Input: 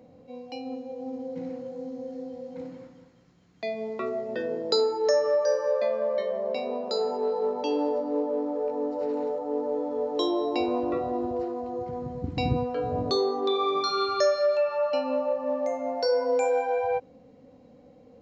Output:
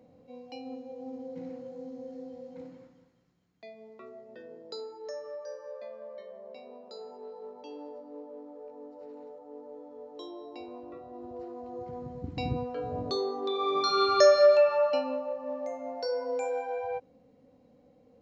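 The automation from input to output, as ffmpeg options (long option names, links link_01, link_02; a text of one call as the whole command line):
ffmpeg -i in.wav -af "volume=16.5dB,afade=type=out:start_time=2.41:duration=1.32:silence=0.266073,afade=type=in:start_time=11.09:duration=0.82:silence=0.281838,afade=type=in:start_time=13.53:duration=0.9:silence=0.281838,afade=type=out:start_time=14.43:duration=0.77:silence=0.237137" out.wav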